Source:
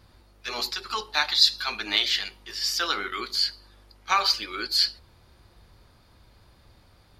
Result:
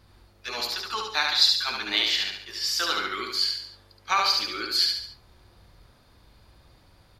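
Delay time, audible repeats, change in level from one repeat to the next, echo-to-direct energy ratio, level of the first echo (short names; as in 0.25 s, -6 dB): 71 ms, 4, -6.5 dB, -2.5 dB, -3.5 dB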